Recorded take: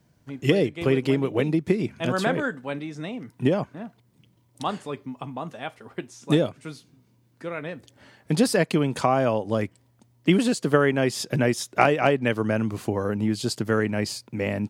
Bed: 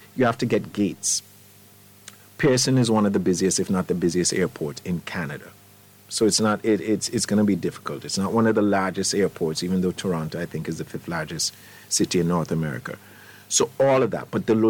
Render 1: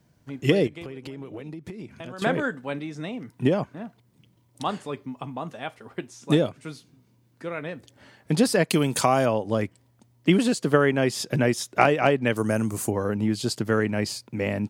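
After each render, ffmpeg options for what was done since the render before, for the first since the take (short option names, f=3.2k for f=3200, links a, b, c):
-filter_complex "[0:a]asettb=1/sr,asplit=3[a][b][c];[a]atrim=end=0.674[d];[b]atrim=start=0.67:end=2.22,asetpts=PTS-STARTPTS,afade=t=in:d=0.004:c=qsin,afade=t=out:st=1.546:d=0.004:c=qsin,acompressor=threshold=-33dB:ratio=16:attack=3.2:release=140:knee=1:detection=peak[e];[c]atrim=start=2.216[f];[d][e]acrossfade=d=0.004:c1=hsin:c2=qsin[g];[g][f]acrossfade=d=0.004:c1=qsin:c2=hsin,asettb=1/sr,asplit=3[h][i][j];[h]atrim=end=8.704[k];[i]atrim=start=8.7:end=9.26,asetpts=PTS-STARTPTS,afade=t=in:d=0.004:c=qsin,afade=t=out:st=0.556:d=0.004:c=qsin,aemphasis=mode=production:type=75kf[l];[j]atrim=start=9.256[m];[k][l]acrossfade=d=0.004:c1=hsin:c2=qsin[n];[n][m]acrossfade=d=0.004:c1=qsin:c2=hsin,asettb=1/sr,asplit=3[o][p][q];[o]atrim=end=12.364[r];[p]atrim=start=12.36:end=12.91,asetpts=PTS-STARTPTS,afade=t=in:d=0.004:c=qsin,afade=t=out:st=0.546:d=0.004:c=qsin,highshelf=f=5.6k:t=q:w=1.5:g=13[s];[q]atrim=start=12.906[t];[r][s]acrossfade=d=0.004:c1=hsin:c2=qsin[u];[u][t]acrossfade=d=0.004:c1=qsin:c2=hsin"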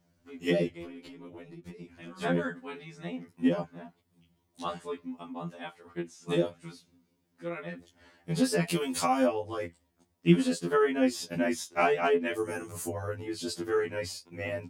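-af "flanger=delay=6.4:depth=8.4:regen=61:speed=0.55:shape=triangular,afftfilt=real='re*2*eq(mod(b,4),0)':imag='im*2*eq(mod(b,4),0)':win_size=2048:overlap=0.75"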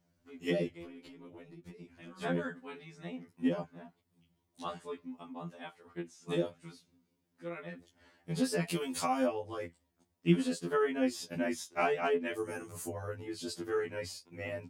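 -af "volume=-5dB"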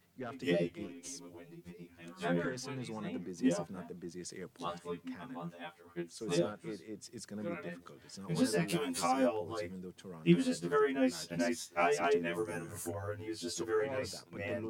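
-filter_complex "[1:a]volume=-23.5dB[a];[0:a][a]amix=inputs=2:normalize=0"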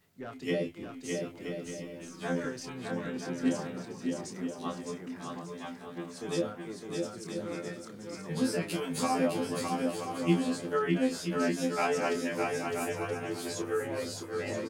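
-filter_complex "[0:a]asplit=2[a][b];[b]adelay=27,volume=-7dB[c];[a][c]amix=inputs=2:normalize=0,asplit=2[d][e];[e]aecho=0:1:610|976|1196|1327|1406:0.631|0.398|0.251|0.158|0.1[f];[d][f]amix=inputs=2:normalize=0"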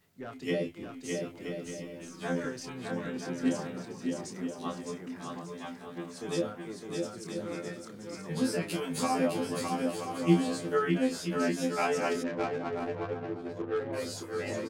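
-filter_complex "[0:a]asettb=1/sr,asplit=3[a][b][c];[a]atrim=end=10.254[d];[b]atrim=start=10.25:end=10.91,asetpts=PTS-STARTPTS,afade=t=in:d=0.004:c=qsin,afade=t=out:st=0.656:d=0.004:c=qsin,asplit=2[e][f];[f]adelay=18,volume=-5dB[g];[e][g]amix=inputs=2:normalize=0,atrim=end_sample=29106[h];[c]atrim=start=10.906[i];[d][h]acrossfade=d=0.004:c1=hsin:c2=qsin[j];[j][i]acrossfade=d=0.004:c1=qsin:c2=hsin,asplit=3[k][l][m];[k]afade=t=out:st=12.22:d=0.02[n];[l]adynamicsmooth=sensitivity=3:basefreq=640,afade=t=in:st=12.22:d=0.02,afade=t=out:st=13.92:d=0.02[o];[m]afade=t=in:st=13.92:d=0.02[p];[n][o][p]amix=inputs=3:normalize=0"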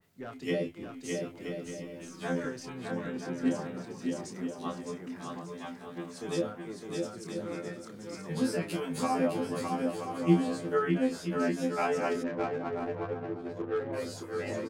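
-af "adynamicequalizer=threshold=0.00316:dfrequency=2300:dqfactor=0.7:tfrequency=2300:tqfactor=0.7:attack=5:release=100:ratio=0.375:range=3:mode=cutabove:tftype=highshelf"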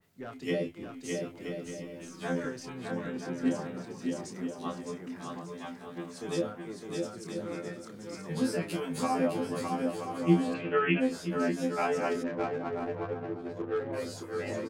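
-filter_complex "[0:a]asplit=3[a][b][c];[a]afade=t=out:st=10.53:d=0.02[d];[b]lowpass=f=2.6k:t=q:w=8.1,afade=t=in:st=10.53:d=0.02,afade=t=out:st=10.99:d=0.02[e];[c]afade=t=in:st=10.99:d=0.02[f];[d][e][f]amix=inputs=3:normalize=0"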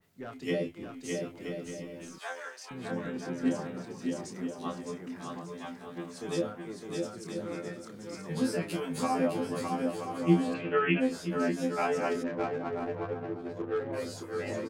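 -filter_complex "[0:a]asettb=1/sr,asplit=3[a][b][c];[a]atrim=end=2.184[d];[b]atrim=start=2.18:end=2.71,asetpts=PTS-STARTPTS,afade=t=in:d=0.004:c=qsin,afade=t=out:st=0.526:d=0.004:c=qsin,highpass=f=660:w=0.5412,highpass=f=660:w=1.3066[e];[c]atrim=start=2.706[f];[d][e]acrossfade=d=0.004:c1=hsin:c2=qsin[g];[g][f]acrossfade=d=0.004:c1=qsin:c2=hsin"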